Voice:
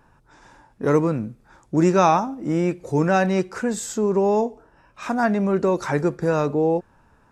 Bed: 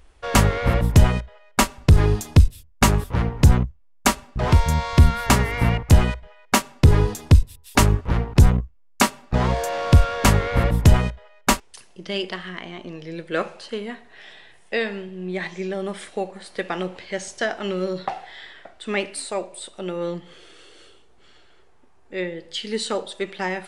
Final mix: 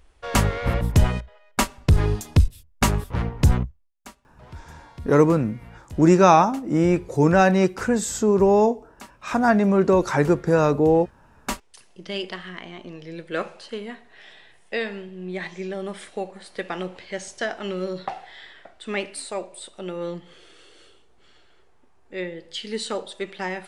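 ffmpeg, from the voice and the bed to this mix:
ffmpeg -i stem1.wav -i stem2.wav -filter_complex "[0:a]adelay=4250,volume=2.5dB[link_01];[1:a]volume=19dB,afade=type=out:start_time=3.68:duration=0.24:silence=0.0794328,afade=type=in:start_time=11.22:duration=0.72:silence=0.0749894[link_02];[link_01][link_02]amix=inputs=2:normalize=0" out.wav

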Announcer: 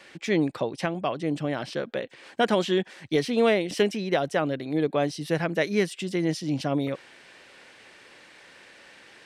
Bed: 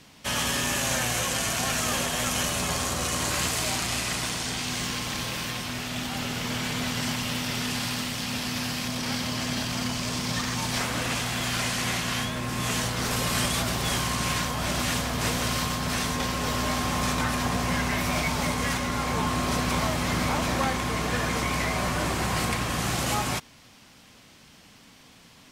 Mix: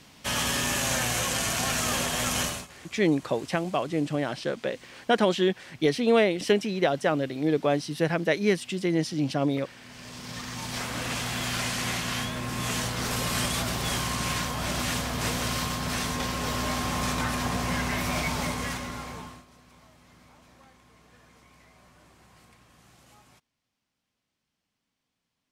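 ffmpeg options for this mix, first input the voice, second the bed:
ffmpeg -i stem1.wav -i stem2.wav -filter_complex "[0:a]adelay=2700,volume=0.5dB[link_01];[1:a]volume=21dB,afade=type=out:start_time=2.42:duration=0.25:silence=0.0707946,afade=type=in:start_time=9.81:duration=1.48:silence=0.0841395,afade=type=out:start_time=18.35:duration=1.1:silence=0.0398107[link_02];[link_01][link_02]amix=inputs=2:normalize=0" out.wav

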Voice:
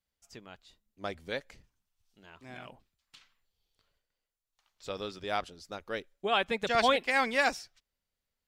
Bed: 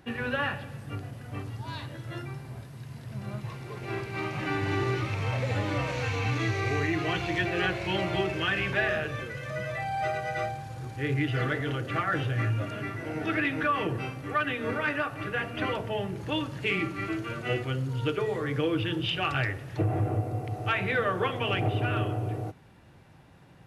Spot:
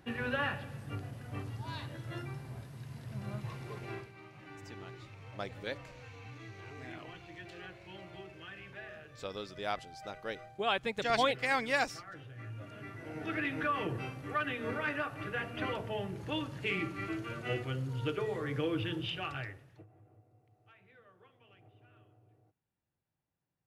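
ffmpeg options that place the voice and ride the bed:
ffmpeg -i stem1.wav -i stem2.wav -filter_complex "[0:a]adelay=4350,volume=-3.5dB[link_01];[1:a]volume=10.5dB,afade=type=out:start_time=3.72:duration=0.43:silence=0.149624,afade=type=in:start_time=12.35:duration=1.27:silence=0.188365,afade=type=out:start_time=18.86:duration=1:silence=0.0375837[link_02];[link_01][link_02]amix=inputs=2:normalize=0" out.wav

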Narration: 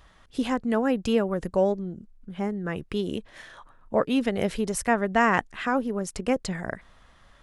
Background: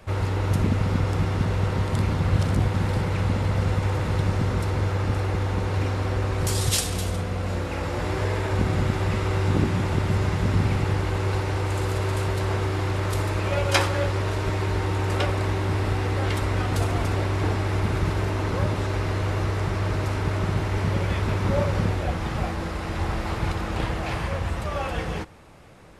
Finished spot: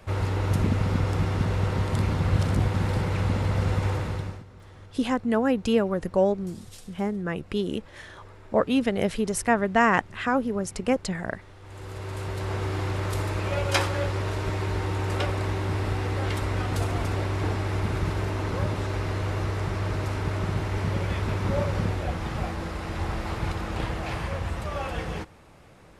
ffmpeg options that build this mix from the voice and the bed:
ffmpeg -i stem1.wav -i stem2.wav -filter_complex "[0:a]adelay=4600,volume=1dB[link_01];[1:a]volume=19.5dB,afade=type=out:start_time=3.89:duration=0.55:silence=0.0749894,afade=type=in:start_time=11.6:duration=1.14:silence=0.0891251[link_02];[link_01][link_02]amix=inputs=2:normalize=0" out.wav

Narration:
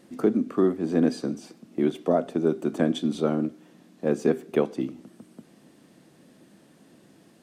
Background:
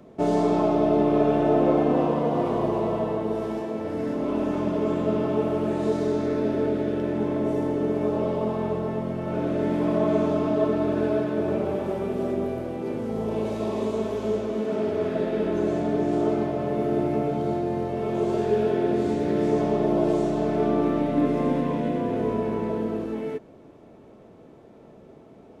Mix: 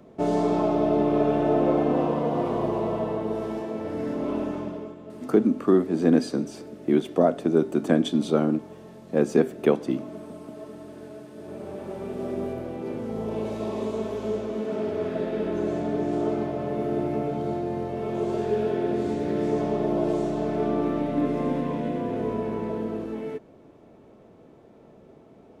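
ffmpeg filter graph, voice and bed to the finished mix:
ffmpeg -i stem1.wav -i stem2.wav -filter_complex "[0:a]adelay=5100,volume=2.5dB[link_01];[1:a]volume=14dB,afade=type=out:start_time=4.31:duration=0.64:silence=0.149624,afade=type=in:start_time=11.36:duration=1.14:silence=0.16788[link_02];[link_01][link_02]amix=inputs=2:normalize=0" out.wav

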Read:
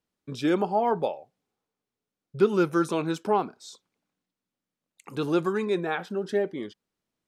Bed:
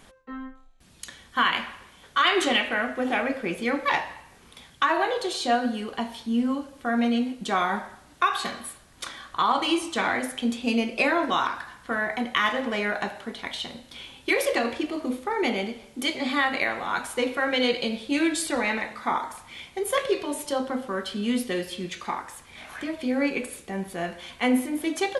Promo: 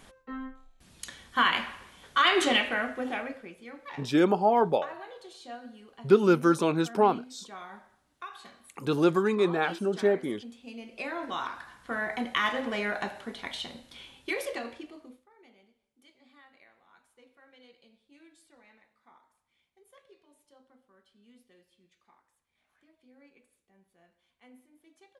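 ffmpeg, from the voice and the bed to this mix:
ffmpeg -i stem1.wav -i stem2.wav -filter_complex "[0:a]adelay=3700,volume=1.5dB[link_01];[1:a]volume=14dB,afade=type=out:start_time=2.56:duration=0.98:silence=0.125893,afade=type=in:start_time=10.77:duration=1.41:silence=0.16788,afade=type=out:start_time=13.59:duration=1.67:silence=0.0316228[link_02];[link_01][link_02]amix=inputs=2:normalize=0" out.wav

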